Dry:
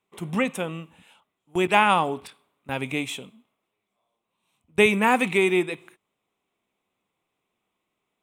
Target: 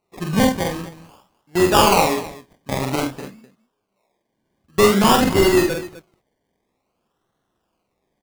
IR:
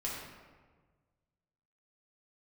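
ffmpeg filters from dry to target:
-filter_complex "[0:a]asettb=1/sr,asplit=3[a][b][c];[a]atrim=end=3.034[d];[b]atrim=start=3.03:end=4.97,asetpts=PTS-STARTPTS,afade=t=in:d=0.004:c=qsin,afade=t=out:st=1.936:d=0.004:c=qsin,lowpass=f=1.7k:w=0.5412,lowpass=f=1.7k:w=1.3066[e];[c]atrim=start=4.966[f];[d][e]acrossfade=d=0.004:c1=hsin:c2=qsin[g];[g][f]acrossfade=d=0.004:c1=qsin:c2=hsin,asplit=2[h][i];[i]aeval=exprs='(mod(4.47*val(0)+1,2)-1)/4.47':c=same,volume=-7.5dB[j];[h][j]amix=inputs=2:normalize=0,acrusher=samples=26:mix=1:aa=0.000001:lfo=1:lforange=15.6:lforate=0.51,aecho=1:1:46|77|255:0.708|0.251|0.158,volume=2dB"

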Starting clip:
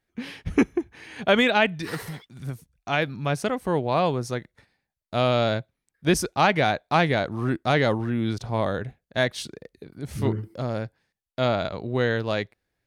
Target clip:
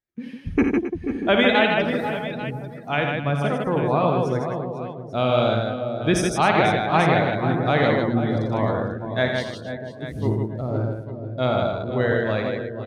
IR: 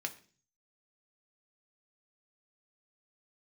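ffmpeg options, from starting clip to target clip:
-filter_complex "[0:a]asplit=2[a][b];[b]adelay=485,lowpass=f=970:p=1,volume=-7dB,asplit=2[c][d];[d]adelay=485,lowpass=f=970:p=1,volume=0.34,asplit=2[e][f];[f]adelay=485,lowpass=f=970:p=1,volume=0.34,asplit=2[g][h];[h]adelay=485,lowpass=f=970:p=1,volume=0.34[i];[c][e][g][i]amix=inputs=4:normalize=0[j];[a][j]amix=inputs=2:normalize=0,afftdn=nr=15:nf=-32,asplit=2[k][l];[l]aecho=0:1:55|84|154|266|497|841:0.376|0.447|0.631|0.211|0.178|0.211[m];[k][m]amix=inputs=2:normalize=0"

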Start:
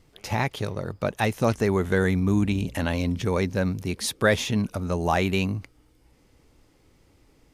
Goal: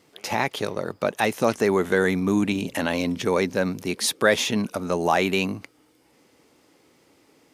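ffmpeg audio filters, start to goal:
-filter_complex "[0:a]highpass=240,asplit=2[a][b];[b]alimiter=limit=-17dB:level=0:latency=1,volume=-2.5dB[c];[a][c]amix=inputs=2:normalize=0"

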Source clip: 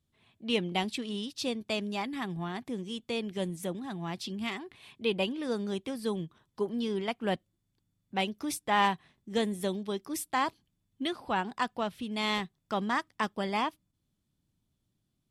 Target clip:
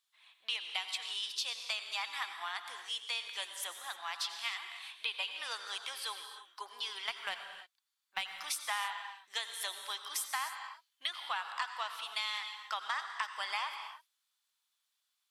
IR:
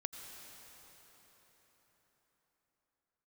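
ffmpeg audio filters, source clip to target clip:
-filter_complex "[0:a]highpass=f=1k:w=0.5412,highpass=f=1k:w=1.3066,equalizer=f=4.1k:t=o:w=0.64:g=3,acompressor=threshold=-37dB:ratio=10,asettb=1/sr,asplit=3[a][b][c];[a]atrim=end=7.014[d];[b]atrim=start=7.01:end=8.3,asetpts=PTS-STARTPTS,afade=t=in:d=0.004:c=qsin,afade=t=out:st=1.286:d=0.004:c=qsin,aeval=exprs='0.0631*(cos(1*acos(clip(val(0)/0.0631,-1,1)))-cos(1*PI/2))+0.00251*(cos(7*acos(clip(val(0)/0.0631,-1,1)))-cos(7*PI/2))':c=same[e];[c]atrim=start=8.296[f];[d][e]acrossfade=d=0.004:c1=hsin:c2=qsin[g];[g][f]acrossfade=d=0.004:c1=qsin:c2=hsin[h];[1:a]atrim=start_sample=2205,afade=t=out:st=0.37:d=0.01,atrim=end_sample=16758[i];[h][i]afir=irnorm=-1:irlink=0,volume=7dB"

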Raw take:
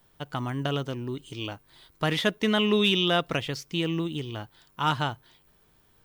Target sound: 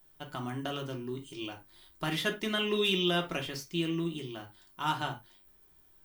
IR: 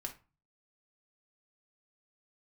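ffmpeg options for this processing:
-filter_complex "[0:a]highshelf=f=8.1k:g=11.5[a];[1:a]atrim=start_sample=2205,afade=t=out:st=0.16:d=0.01,atrim=end_sample=7497[b];[a][b]afir=irnorm=-1:irlink=0,volume=-4.5dB"

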